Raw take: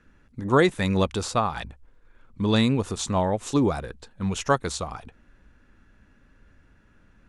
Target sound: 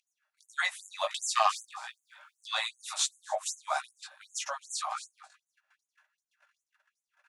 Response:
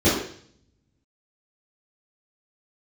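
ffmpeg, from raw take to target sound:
-filter_complex "[0:a]alimiter=limit=-16dB:level=0:latency=1:release=89,aecho=1:1:268|536:0.158|0.0349,asettb=1/sr,asplit=3[link_01][link_02][link_03];[link_01]atrim=end=1.344[link_04];[link_02]atrim=start=1.34:end=2.46,asetpts=PTS-STARTPTS,afade=type=in:duration=0.004:curve=qsin,afade=type=out:start_time=1.116:duration=0.004:curve=qsin,aeval=exprs='0.178*(cos(1*acos(clip(val(0)/0.178,-1,1)))-cos(1*PI/2))+0.0355*(cos(5*acos(clip(val(0)/0.178,-1,1)))-cos(5*PI/2))':channel_layout=same[link_05];[link_03]atrim=start=2.456[link_06];[link_04][link_05]acrossfade=duration=0.004:curve1=hsin:curve2=qsin[link_07];[link_07][link_06]acrossfade=duration=0.004:curve1=qsin:curve2=hsin,flanger=delay=15.5:depth=5:speed=1.6,asettb=1/sr,asplit=3[link_08][link_09][link_10];[link_08]atrim=end=3.064[link_11];[link_09]atrim=start=3.06:end=3.46,asetpts=PTS-STARTPTS,afade=type=in:duration=0.004:curve=qsin,afade=type=out:start_time=0.396:duration=0.004:curve=qsin,equalizer=frequency=3500:width_type=o:width=2.9:gain=-9[link_12];[link_10]atrim=start=3.456[link_13];[link_11][link_12]acrossfade=duration=0.004:curve1=hsin:curve2=qsin[link_14];[link_14][link_13]acrossfade=duration=0.004:curve1=qsin:curve2=hsin,asplit=3[link_15][link_16][link_17];[link_15]afade=type=out:start_time=4.37:duration=0.02[link_18];[link_16]acompressor=threshold=-35dB:ratio=6,afade=type=in:start_time=4.37:duration=0.02,afade=type=out:start_time=4.78:duration=0.02[link_19];[link_17]afade=type=in:start_time=4.78:duration=0.02[link_20];[link_18][link_19][link_20]amix=inputs=3:normalize=0,aecho=1:1:6.5:0.43,acompressor=mode=upward:threshold=-47dB:ratio=2.5,agate=range=-21dB:threshold=-51dB:ratio=16:detection=peak,afftfilt=real='re*gte(b*sr/1024,530*pow(6300/530,0.5+0.5*sin(2*PI*2.6*pts/sr)))':imag='im*gte(b*sr/1024,530*pow(6300/530,0.5+0.5*sin(2*PI*2.6*pts/sr)))':win_size=1024:overlap=0.75,volume=5dB"

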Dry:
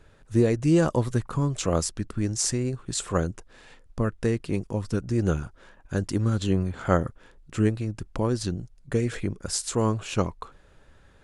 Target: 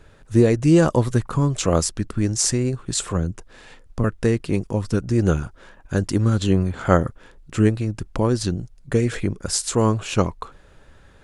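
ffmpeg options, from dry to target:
ffmpeg -i in.wav -filter_complex "[0:a]asettb=1/sr,asplit=3[link_01][link_02][link_03];[link_01]atrim=end=3.034[link_04];[link_02]atrim=start=3.03:end=4.04,asetpts=PTS-STARTPTS,afade=type=in:duration=0.004:curve=qsin,afade=type=out:start_time=1.006:duration=0.004:curve=qsin,acrossover=split=250[link_05][link_06];[link_06]acompressor=threshold=-34dB:ratio=4[link_07];[link_05][link_07]amix=inputs=2:normalize=0[link_08];[link_03]atrim=start=4.036[link_09];[link_04][link_08]acrossfade=duration=0.004:curve1=hsin:curve2=qsin[link_10];[link_10][link_09]acrossfade=duration=0.004:curve1=qsin:curve2=hsin,volume=5.5dB" out.wav

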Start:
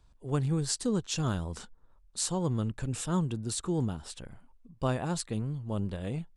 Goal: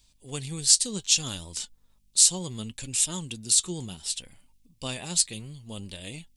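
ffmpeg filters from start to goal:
ffmpeg -i in.wav -af "aeval=exprs='val(0)+0.000631*(sin(2*PI*50*n/s)+sin(2*PI*2*50*n/s)/2+sin(2*PI*3*50*n/s)/3+sin(2*PI*4*50*n/s)/4+sin(2*PI*5*50*n/s)/5)':channel_layout=same,flanger=delay=3.2:depth=2.4:regen=66:speed=0.66:shape=sinusoidal,aexciter=amount=7.9:drive=4.9:freq=2100,volume=-2dB" out.wav

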